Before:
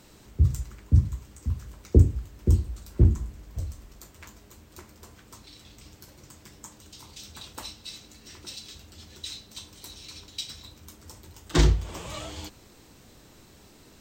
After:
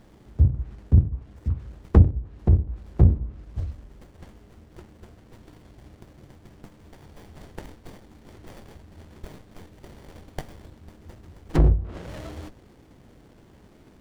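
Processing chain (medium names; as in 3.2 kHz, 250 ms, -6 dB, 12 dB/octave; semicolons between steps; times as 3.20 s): self-modulated delay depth 0.85 ms; low-pass that closes with the level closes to 500 Hz, closed at -19 dBFS; sliding maximum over 33 samples; trim +3 dB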